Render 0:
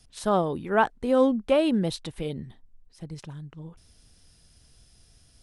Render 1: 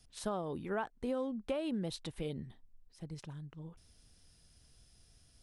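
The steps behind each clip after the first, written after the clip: compressor 10:1, threshold -26 dBFS, peak gain reduction 11.5 dB; gain -6.5 dB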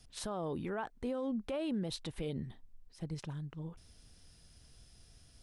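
high shelf 7500 Hz -4 dB; limiter -34 dBFS, peak gain reduction 10 dB; gain +4.5 dB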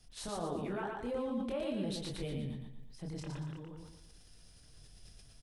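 chorus voices 4, 0.4 Hz, delay 26 ms, depth 5 ms; feedback echo 0.116 s, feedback 38%, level -3.5 dB; sustainer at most 52 dB/s; gain +1.5 dB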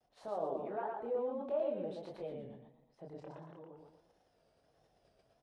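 band-pass 640 Hz, Q 2.2; vibrato 1.5 Hz 90 cents; gain +5 dB

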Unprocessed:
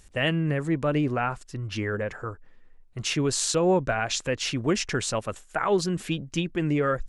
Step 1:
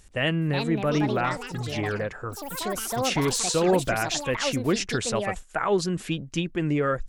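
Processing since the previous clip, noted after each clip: echoes that change speed 0.417 s, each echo +6 st, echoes 3, each echo -6 dB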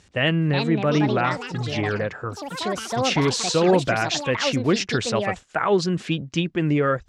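Chebyshev band-pass 100–4900 Hz, order 2; gain +4.5 dB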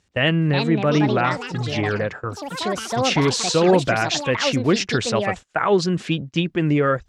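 gate -35 dBFS, range -13 dB; gain +2 dB

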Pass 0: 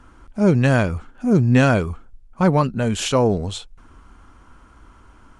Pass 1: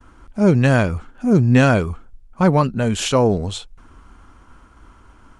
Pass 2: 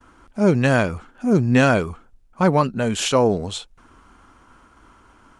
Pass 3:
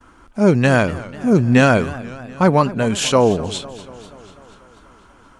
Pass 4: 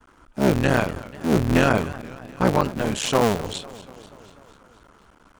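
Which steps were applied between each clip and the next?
expander -46 dBFS; gain +1.5 dB
low shelf 120 Hz -11 dB
warbling echo 0.244 s, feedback 64%, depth 136 cents, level -18 dB; gain +3 dB
cycle switcher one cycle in 3, muted; gain -4 dB

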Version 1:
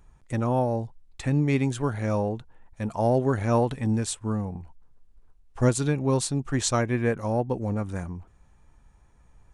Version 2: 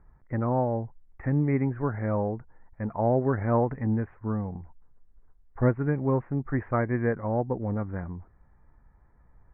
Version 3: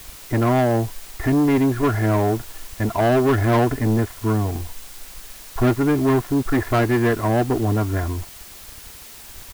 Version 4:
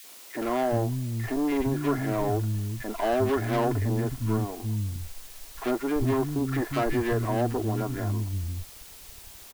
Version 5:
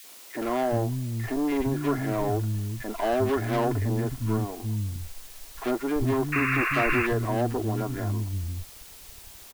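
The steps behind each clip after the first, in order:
steep low-pass 2100 Hz 72 dB/oct; gain -1.5 dB
comb 2.9 ms, depth 83%; sample leveller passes 3; added noise white -41 dBFS
three bands offset in time highs, mids, lows 40/400 ms, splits 230/1500 Hz; gain -6 dB
painted sound noise, 6.32–7.07, 1000–2800 Hz -27 dBFS

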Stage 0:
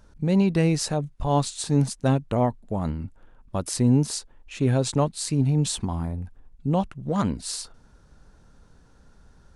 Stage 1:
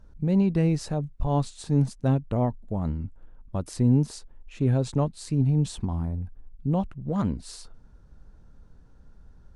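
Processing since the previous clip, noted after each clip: tilt -2 dB/oct; gain -6 dB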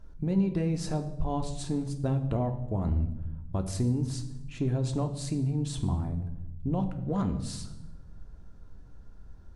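compressor, threshold -25 dBFS, peak gain reduction 9.5 dB; reverb RT60 0.95 s, pre-delay 3 ms, DRR 5.5 dB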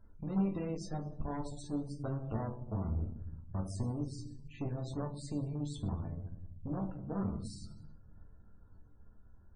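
added harmonics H 6 -17 dB, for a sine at -15 dBFS; resonator bank D2 sus4, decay 0.2 s; loudest bins only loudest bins 64; gain +1 dB

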